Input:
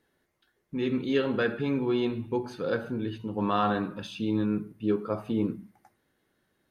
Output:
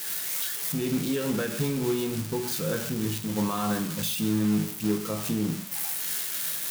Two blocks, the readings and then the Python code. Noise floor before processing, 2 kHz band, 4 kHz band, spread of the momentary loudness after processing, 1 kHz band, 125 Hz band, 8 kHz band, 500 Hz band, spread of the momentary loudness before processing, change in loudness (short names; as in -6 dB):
-75 dBFS, 0.0 dB, +7.5 dB, 3 LU, -3.5 dB, +4.5 dB, n/a, -2.0 dB, 7 LU, +1.5 dB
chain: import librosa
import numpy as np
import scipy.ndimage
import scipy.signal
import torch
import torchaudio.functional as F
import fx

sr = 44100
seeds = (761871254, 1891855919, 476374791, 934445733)

p1 = x + 0.5 * 10.0 ** (-20.0 / 20.0) * np.diff(np.sign(x), prepend=np.sign(x[:1]))
p2 = fx.recorder_agc(p1, sr, target_db=-16.0, rise_db_per_s=25.0, max_gain_db=30)
p3 = fx.peak_eq(p2, sr, hz=160.0, db=12.5, octaves=0.56)
p4 = fx.tremolo_shape(p3, sr, shape='triangle', hz=3.3, depth_pct=30)
p5 = fx.comb_fb(p4, sr, f0_hz=53.0, decay_s=0.45, harmonics='all', damping=0.0, mix_pct=60)
p6 = np.clip(p5, -10.0 ** (-33.0 / 20.0), 10.0 ** (-33.0 / 20.0))
p7 = p5 + (p6 * 10.0 ** (-8.0 / 20.0))
y = fx.quant_float(p7, sr, bits=2)